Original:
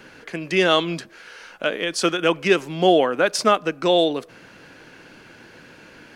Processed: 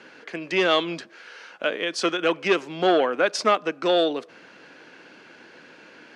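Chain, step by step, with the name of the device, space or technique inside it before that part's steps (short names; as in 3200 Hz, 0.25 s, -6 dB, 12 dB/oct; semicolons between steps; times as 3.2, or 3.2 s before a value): public-address speaker with an overloaded transformer (core saturation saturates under 710 Hz; BPF 240–6000 Hz); gain -1.5 dB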